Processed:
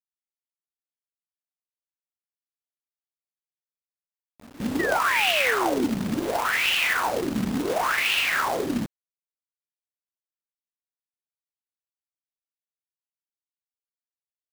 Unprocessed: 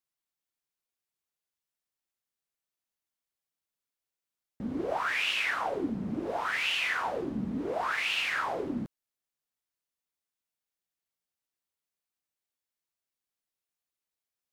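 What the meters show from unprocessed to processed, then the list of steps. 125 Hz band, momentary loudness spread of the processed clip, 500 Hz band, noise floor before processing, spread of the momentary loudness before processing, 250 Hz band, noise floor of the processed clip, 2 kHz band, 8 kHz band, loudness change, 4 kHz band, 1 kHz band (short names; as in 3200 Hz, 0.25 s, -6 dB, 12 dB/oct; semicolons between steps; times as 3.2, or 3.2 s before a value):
+7.0 dB, 8 LU, +7.5 dB, under -85 dBFS, 8 LU, +7.5 dB, under -85 dBFS, +7.0 dB, +13.0 dB, +7.5 dB, +7.0 dB, +7.5 dB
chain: pre-echo 0.206 s -22.5 dB; companded quantiser 4-bit; painted sound fall, 4.79–5.85, 230–2000 Hz -35 dBFS; gain +6.5 dB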